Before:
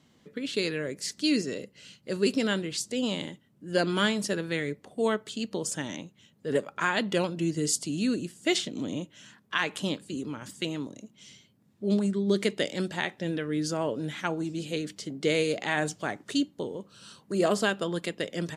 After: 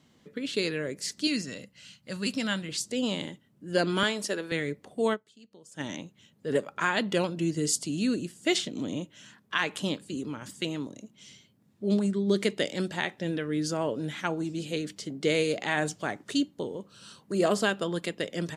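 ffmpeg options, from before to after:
ffmpeg -i in.wav -filter_complex "[0:a]asettb=1/sr,asplit=3[link_01][link_02][link_03];[link_01]atrim=end=1.274[link_04];[link_02]atrim=start=1.27:end=2.69,asetpts=PTS-STARTPTS,afade=type=in:duration=0.004:curve=qsin,afade=type=out:start_time=1.416:duration=0.004:curve=qsin,equalizer=frequency=400:width_type=o:width=0.69:gain=-14.5[link_05];[link_03]atrim=start=2.686[link_06];[link_04][link_05]acrossfade=duration=0.004:curve1=hsin:curve2=qsin[link_07];[link_07][link_06]acrossfade=duration=0.004:curve1=qsin:curve2=hsin,asettb=1/sr,asplit=3[link_08][link_09][link_10];[link_08]atrim=end=4.034[link_11];[link_09]atrim=start=4.03:end=4.52,asetpts=PTS-STARTPTS,afade=type=in:duration=0.004:curve=qsin,afade=type=out:start_time=0.486:duration=0.004:curve=qsin,highpass=300[link_12];[link_10]atrim=start=4.516[link_13];[link_11][link_12]acrossfade=duration=0.004:curve1=hsin:curve2=qsin[link_14];[link_14][link_13]acrossfade=duration=0.004:curve1=qsin:curve2=hsin,asplit=3[link_15][link_16][link_17];[link_15]atrim=end=5.45,asetpts=PTS-STARTPTS,afade=type=out:start_time=5.13:duration=0.32:curve=exp:silence=0.0841395[link_18];[link_16]atrim=start=5.45:end=5.49,asetpts=PTS-STARTPTS,volume=-21.5dB[link_19];[link_17]atrim=start=5.49,asetpts=PTS-STARTPTS,afade=type=in:duration=0.32:curve=exp:silence=0.0841395[link_20];[link_18][link_19][link_20]concat=n=3:v=0:a=1" out.wav

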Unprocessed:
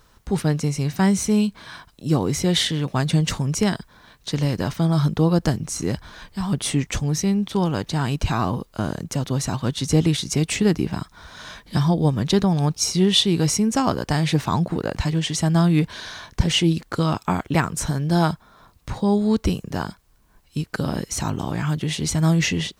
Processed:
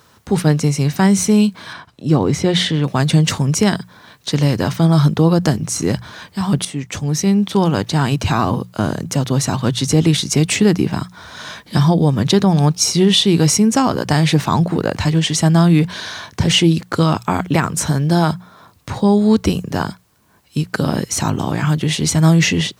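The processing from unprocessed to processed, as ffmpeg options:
ffmpeg -i in.wav -filter_complex "[0:a]asettb=1/sr,asplit=3[link_01][link_02][link_03];[link_01]atrim=end=1.734[link_04];[link_02]atrim=start=1.73:end=2.84,asetpts=PTS-STARTPTS,afade=type=in:duration=0.004:curve=qsin,afade=type=out:start_time=1.106:duration=0.004:curve=qsin,aemphasis=mode=reproduction:type=50kf[link_05];[link_03]atrim=start=2.836[link_06];[link_04][link_05]acrossfade=duration=0.004:curve1=hsin:curve2=qsin[link_07];[link_07][link_06]acrossfade=duration=0.004:curve1=qsin:curve2=hsin,asplit=2[link_08][link_09];[link_08]atrim=end=6.65,asetpts=PTS-STARTPTS,afade=type=out:start_time=6.646:duration=0.004:curve=hsin:silence=0.188365[link_10];[link_09]atrim=start=6.65,asetpts=PTS-STARTPTS,afade=type=in:duration=0.73:silence=0.188365[link_11];[link_10][link_11]concat=n=2:v=0:a=1,highpass=frequency=81:width=0.5412,highpass=frequency=81:width=1.3066,bandreject=frequency=60:width_type=h:width=6,bandreject=frequency=120:width_type=h:width=6,bandreject=frequency=180:width_type=h:width=6,alimiter=level_in=10dB:limit=-1dB:release=50:level=0:latency=1,volume=-3dB" out.wav

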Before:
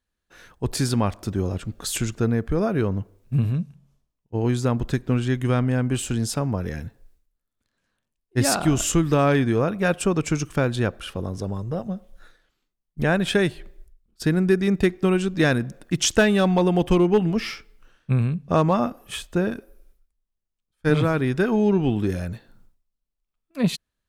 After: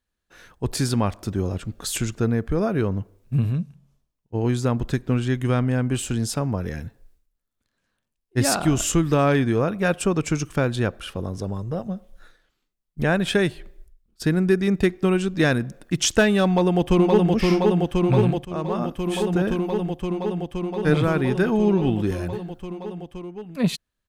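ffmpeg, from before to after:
ffmpeg -i in.wav -filter_complex "[0:a]asplit=2[link_01][link_02];[link_02]afade=type=in:start_time=16.46:duration=0.01,afade=type=out:start_time=17.32:duration=0.01,aecho=0:1:520|1040|1560|2080|2600|3120|3640|4160|4680|5200|5720|6240:0.794328|0.675179|0.573902|0.487817|0.414644|0.352448|0.299581|0.254643|0.216447|0.18398|0.156383|0.132925[link_03];[link_01][link_03]amix=inputs=2:normalize=0,asplit=2[link_04][link_05];[link_04]atrim=end=18.45,asetpts=PTS-STARTPTS,afade=type=out:start_time=18.446:duration=0.004:curve=hsin:silence=0.16788[link_06];[link_05]atrim=start=18.45,asetpts=PTS-STARTPTS,afade=type=in:duration=0.85:silence=0.16788[link_07];[link_06][link_07]concat=n=2:v=0:a=1" out.wav

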